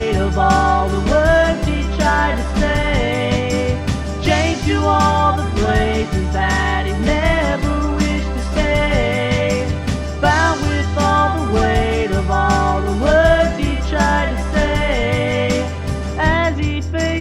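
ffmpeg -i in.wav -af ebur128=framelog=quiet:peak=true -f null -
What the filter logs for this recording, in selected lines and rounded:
Integrated loudness:
  I:         -16.7 LUFS
  Threshold: -26.7 LUFS
Loudness range:
  LRA:         1.9 LU
  Threshold: -36.7 LUFS
  LRA low:   -17.6 LUFS
  LRA high:  -15.7 LUFS
True peak:
  Peak:       -1.7 dBFS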